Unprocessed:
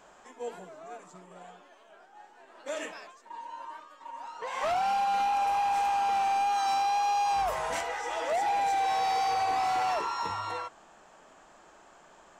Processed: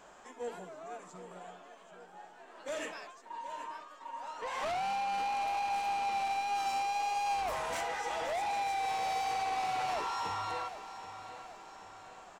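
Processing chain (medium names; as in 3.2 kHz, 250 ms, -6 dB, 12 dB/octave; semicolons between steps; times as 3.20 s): saturation -32 dBFS, distortion -12 dB; on a send: feedback delay 779 ms, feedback 52%, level -12.5 dB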